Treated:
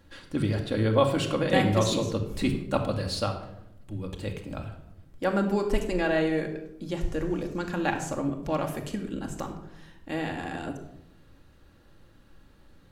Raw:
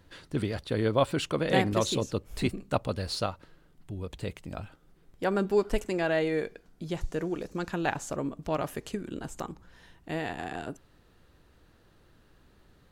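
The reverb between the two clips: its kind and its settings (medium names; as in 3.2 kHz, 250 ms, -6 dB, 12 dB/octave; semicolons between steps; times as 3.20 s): simulated room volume 2500 m³, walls furnished, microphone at 2.3 m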